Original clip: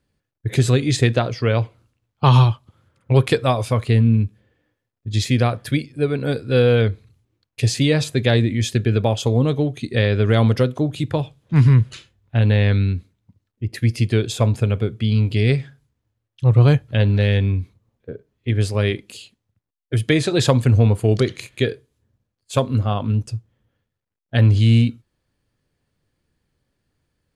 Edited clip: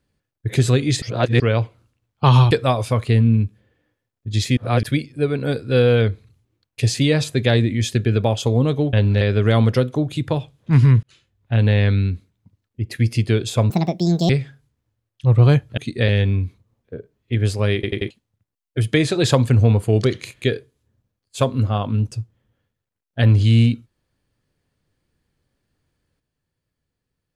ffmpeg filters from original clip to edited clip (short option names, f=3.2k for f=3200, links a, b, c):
-filter_complex "[0:a]asplit=17[a][b][c][d][e][f][g][h][i][j][k][l][m][n][o][p][q];[a]atrim=end=1.022[r];[b]atrim=start=1.018:end=1.402,asetpts=PTS-STARTPTS,areverse[s];[c]atrim=start=1.398:end=2.512[t];[d]atrim=start=3.308:end=5.372[u];[e]atrim=start=5.368:end=5.632,asetpts=PTS-STARTPTS,areverse[v];[f]atrim=start=5.628:end=9.732[w];[g]atrim=start=16.958:end=17.242[x];[h]atrim=start=10.038:end=11.86,asetpts=PTS-STARTPTS,afade=t=out:st=1.818:d=0.004:c=hsin[y];[i]atrim=start=11.86:end=14.534,asetpts=PTS-STARTPTS,afade=t=in:d=0.56[z];[j]atrim=start=14.53:end=15.48,asetpts=PTS-STARTPTS,asetrate=70560,aresample=44100,atrim=end_sample=26184,asetpts=PTS-STARTPTS[aa];[k]atrim=start=15.476:end=16.962[ab];[l]atrim=start=9.728:end=10.042[ac];[m]atrim=start=17.238:end=18.992[ad];[n]atrim=start=18.898:end=18.992[ae];[o]atrim=start=18.898:end=18.992[af];[p]atrim=start=18.898:end=18.992[ag];[q]atrim=start=19.258[ah];[r][s]acrossfade=d=0.004:c1=hsin:c2=hsin[ai];[ai][t]acrossfade=d=0.004:c1=hsin:c2=hsin[aj];[aj][u]acrossfade=d=0.004:c1=hsin:c2=hsin[ak];[ak][v]acrossfade=d=0.004:c1=hsin:c2=hsin[al];[al][w]acrossfade=d=0.004:c1=hsin:c2=hsin[am];[am][x]acrossfade=d=0.004:c1=hsin:c2=hsin[an];[y][z]concat=n=2:v=0:a=1[ao];[an][ao]acrossfade=d=0.004:c1=hsin:c2=hsin[ap];[ap][aa]acrossfade=d=0.004:c1=hsin:c2=hsin[aq];[aq][ab]acrossfade=d=0.004:c1=hsin:c2=hsin[ar];[ar][ac]acrossfade=d=0.004:c1=hsin:c2=hsin[as];[as][ad]acrossfade=d=0.004:c1=hsin:c2=hsin[at];[at][ae]acrossfade=d=0.004:c1=hsin:c2=hsin[au];[au][af]acrossfade=d=0.004:c1=hsin:c2=hsin[av];[av][ag]acrossfade=d=0.004:c1=hsin:c2=hsin[aw];[aw][ah]acrossfade=d=0.004:c1=hsin:c2=hsin"